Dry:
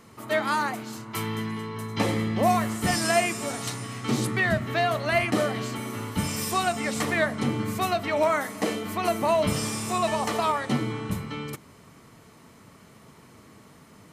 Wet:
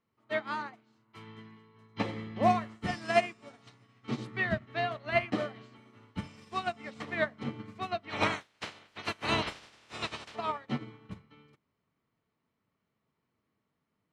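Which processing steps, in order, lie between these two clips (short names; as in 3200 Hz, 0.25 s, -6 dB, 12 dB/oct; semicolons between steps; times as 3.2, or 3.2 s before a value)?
8.09–10.34 spectral limiter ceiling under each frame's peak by 27 dB; Chebyshev low-pass 3500 Hz, order 2; upward expander 2.5:1, over -38 dBFS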